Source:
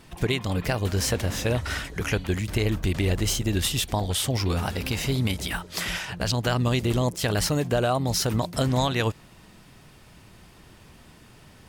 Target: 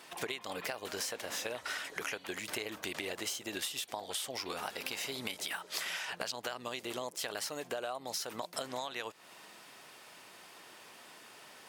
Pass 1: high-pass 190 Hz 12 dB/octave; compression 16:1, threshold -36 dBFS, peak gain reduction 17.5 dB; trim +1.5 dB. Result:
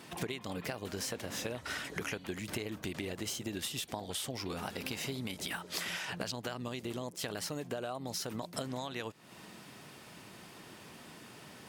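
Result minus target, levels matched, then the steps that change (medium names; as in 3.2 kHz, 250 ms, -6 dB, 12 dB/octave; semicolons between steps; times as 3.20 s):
250 Hz band +7.0 dB
change: high-pass 520 Hz 12 dB/octave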